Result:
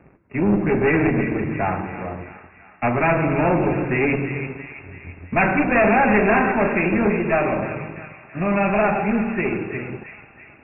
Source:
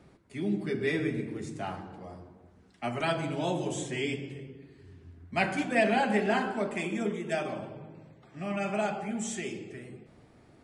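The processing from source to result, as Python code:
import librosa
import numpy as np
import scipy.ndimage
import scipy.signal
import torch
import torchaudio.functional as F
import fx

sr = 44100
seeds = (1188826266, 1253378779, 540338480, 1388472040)

y = fx.leveller(x, sr, passes=2)
y = fx.clip_asym(y, sr, top_db=-29.5, bottom_db=-16.5)
y = fx.brickwall_lowpass(y, sr, high_hz=2800.0)
y = fx.echo_wet_highpass(y, sr, ms=333, feedback_pct=55, hz=1500.0, wet_db=-8.0)
y = y * 10.0 ** (8.0 / 20.0)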